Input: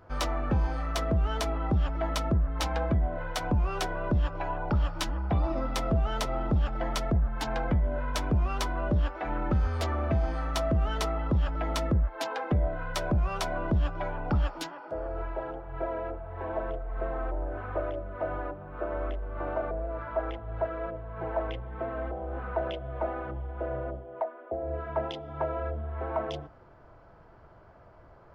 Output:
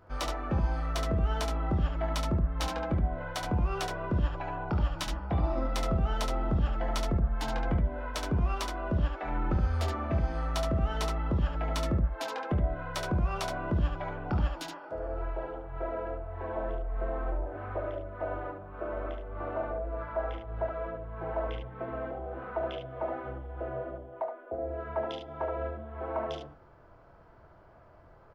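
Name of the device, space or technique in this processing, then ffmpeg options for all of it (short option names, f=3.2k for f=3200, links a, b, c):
slapback doubling: -filter_complex "[0:a]asplit=3[a][b][c];[b]adelay=23,volume=-8.5dB[d];[c]adelay=72,volume=-5dB[e];[a][d][e]amix=inputs=3:normalize=0,volume=-3.5dB"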